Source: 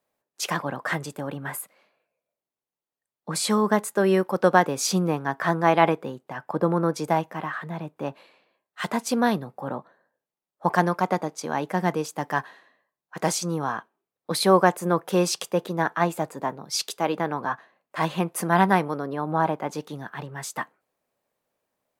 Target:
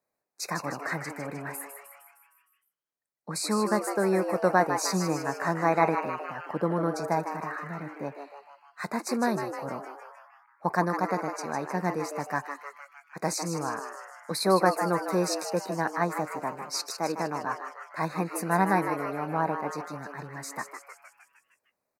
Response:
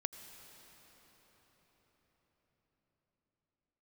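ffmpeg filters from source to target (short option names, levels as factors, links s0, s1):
-filter_complex "[0:a]asuperstop=centerf=3100:order=12:qfactor=2.6,asplit=8[s0][s1][s2][s3][s4][s5][s6][s7];[s1]adelay=154,afreqshift=140,volume=0.398[s8];[s2]adelay=308,afreqshift=280,volume=0.226[s9];[s3]adelay=462,afreqshift=420,volume=0.129[s10];[s4]adelay=616,afreqshift=560,volume=0.0741[s11];[s5]adelay=770,afreqshift=700,volume=0.0422[s12];[s6]adelay=924,afreqshift=840,volume=0.024[s13];[s7]adelay=1078,afreqshift=980,volume=0.0136[s14];[s0][s8][s9][s10][s11][s12][s13][s14]amix=inputs=8:normalize=0,volume=0.562"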